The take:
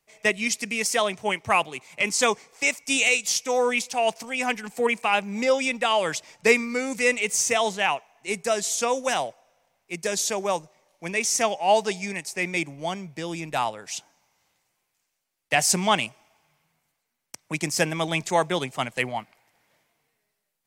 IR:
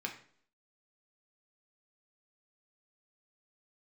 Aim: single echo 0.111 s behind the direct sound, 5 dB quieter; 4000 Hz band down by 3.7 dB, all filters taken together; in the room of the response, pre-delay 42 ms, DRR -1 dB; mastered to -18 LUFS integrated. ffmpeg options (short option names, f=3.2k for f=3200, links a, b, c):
-filter_complex "[0:a]equalizer=f=4k:t=o:g=-5.5,aecho=1:1:111:0.562,asplit=2[a][b];[1:a]atrim=start_sample=2205,adelay=42[c];[b][c]afir=irnorm=-1:irlink=0,volume=-0.5dB[d];[a][d]amix=inputs=2:normalize=0,volume=3dB"